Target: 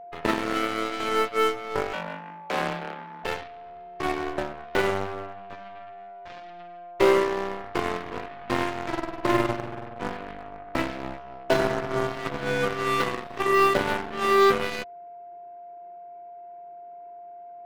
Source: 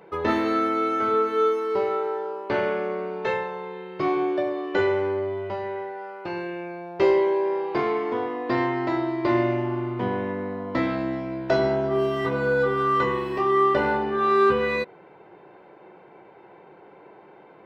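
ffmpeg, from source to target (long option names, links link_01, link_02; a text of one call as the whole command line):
ffmpeg -i in.wav -filter_complex "[0:a]highpass=frequency=99:width=0.5412,highpass=frequency=99:width=1.3066,equalizer=frequency=3600:width_type=o:width=0.24:gain=-7,aeval=exprs='0.376*(cos(1*acos(clip(val(0)/0.376,-1,1)))-cos(1*PI/2))+0.0168*(cos(6*acos(clip(val(0)/0.376,-1,1)))-cos(6*PI/2))+0.0596*(cos(7*acos(clip(val(0)/0.376,-1,1)))-cos(7*PI/2))':channel_layout=same,aeval=exprs='val(0)+0.00631*sin(2*PI*700*n/s)':channel_layout=same,asettb=1/sr,asplit=3[link_01][link_02][link_03];[link_01]atrim=end=1.934[link_04];[link_02]atrim=start=1.93:end=3.24,asetpts=PTS-STARTPTS,afade=type=in:duration=0.004:curve=qsin,afade=type=out:start_time=1.306:duration=0.004:curve=qsin,afreqshift=170[link_05];[link_03]atrim=start=3.236[link_06];[link_04][link_05]acrossfade=duration=0.004:curve1=hsin:curve2=qsin[link_07];[link_07][link_06]acrossfade=duration=0.004:curve1=qsin:curve2=hsin,asplit=2[link_08][link_09];[link_09]aeval=exprs='0.0266*(abs(mod(val(0)/0.0266+3,4)-2)-1)':channel_layout=same,volume=-5dB[link_10];[link_08][link_10]amix=inputs=2:normalize=0" out.wav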